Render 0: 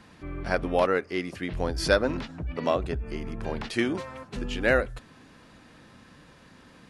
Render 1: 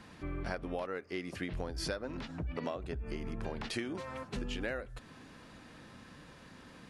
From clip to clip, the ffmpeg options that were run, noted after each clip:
-af "acompressor=threshold=-33dB:ratio=12,volume=-1dB"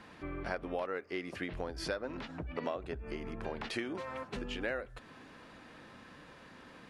-af "bass=f=250:g=-7,treble=f=4k:g=-7,volume=2dB"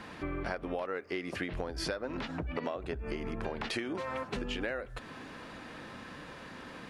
-af "acompressor=threshold=-41dB:ratio=3,volume=7.5dB"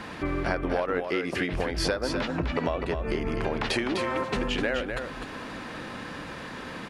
-af "aecho=1:1:253:0.501,volume=7.5dB"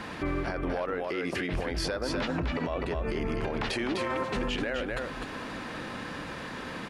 -af "alimiter=limit=-22dB:level=0:latency=1:release=21"

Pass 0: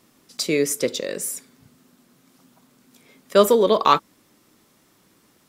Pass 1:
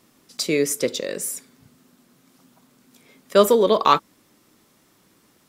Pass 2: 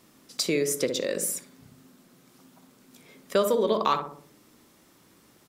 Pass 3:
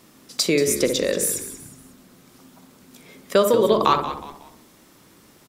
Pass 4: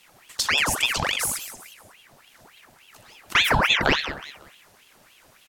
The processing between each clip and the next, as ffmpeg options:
-af anull
-filter_complex "[0:a]asplit=2[a][b];[b]adelay=61,lowpass=f=840:p=1,volume=-5dB,asplit=2[c][d];[d]adelay=61,lowpass=f=840:p=1,volume=0.49,asplit=2[e][f];[f]adelay=61,lowpass=f=840:p=1,volume=0.49,asplit=2[g][h];[h]adelay=61,lowpass=f=840:p=1,volume=0.49,asplit=2[i][j];[j]adelay=61,lowpass=f=840:p=1,volume=0.49,asplit=2[k][l];[l]adelay=61,lowpass=f=840:p=1,volume=0.49[m];[c][e][g][i][k][m]amix=inputs=6:normalize=0[n];[a][n]amix=inputs=2:normalize=0,acompressor=threshold=-24dB:ratio=2.5"
-filter_complex "[0:a]asplit=4[a][b][c][d];[b]adelay=183,afreqshift=-76,volume=-12dB[e];[c]adelay=366,afreqshift=-152,volume=-21.4dB[f];[d]adelay=549,afreqshift=-228,volume=-30.7dB[g];[a][e][f][g]amix=inputs=4:normalize=0,volume=6dB"
-af "aeval=exprs='val(0)*sin(2*PI*1700*n/s+1700*0.8/3.5*sin(2*PI*3.5*n/s))':c=same"

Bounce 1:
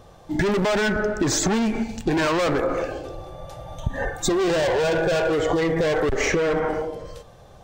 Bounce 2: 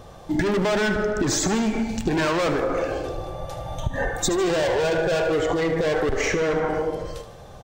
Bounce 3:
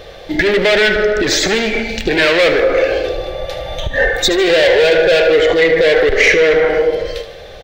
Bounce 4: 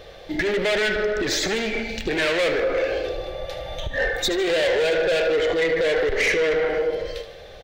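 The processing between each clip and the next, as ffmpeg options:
-filter_complex "[0:a]acompressor=threshold=-25dB:ratio=6,asplit=2[a][b];[b]aecho=0:1:76|152|228|304|380|456:0.251|0.138|0.076|0.0418|0.023|0.0126[c];[a][c]amix=inputs=2:normalize=0,volume=4.5dB"
-af "equalizer=f=125:t=o:w=1:g=-9,equalizer=f=250:t=o:w=1:g=-7,equalizer=f=500:t=o:w=1:g=9,equalizer=f=1k:t=o:w=1:g=-11,equalizer=f=2k:t=o:w=1:g=11,equalizer=f=4k:t=o:w=1:g=9,equalizer=f=8k:t=o:w=1:g=-9,acontrast=66,volume=1.5dB"
-af "asoftclip=type=tanh:threshold=-6.5dB,volume=-8dB"

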